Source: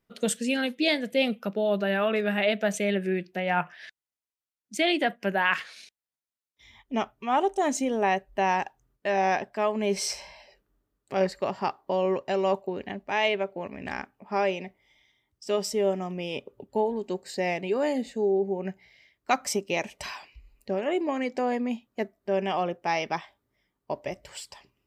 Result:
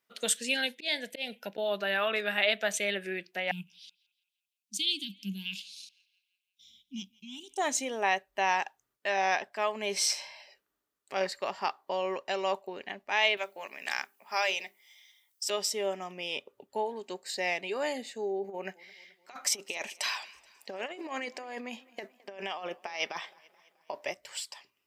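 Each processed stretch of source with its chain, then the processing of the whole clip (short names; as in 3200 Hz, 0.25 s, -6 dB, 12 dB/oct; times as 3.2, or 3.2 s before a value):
0.49–1.58 de-esser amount 30% + auto swell 0.214 s + Butterworth band-stop 1200 Hz, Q 2.7
3.51–7.57 inverse Chebyshev band-stop 460–1900 Hz + bell 190 Hz +13.5 dB 0.32 oct + narrowing echo 0.169 s, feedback 61%, band-pass 1800 Hz, level -20 dB
13.37–15.5 RIAA curve recording + notches 50/100/150/200/250/300/350/400 Hz
18.44–24.12 HPF 180 Hz 6 dB/oct + negative-ratio compressor -31 dBFS, ratio -0.5 + warbling echo 0.215 s, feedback 58%, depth 99 cents, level -23.5 dB
whole clip: HPF 1400 Hz 6 dB/oct; dynamic EQ 3700 Hz, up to +4 dB, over -50 dBFS, Q 4; gain +2.5 dB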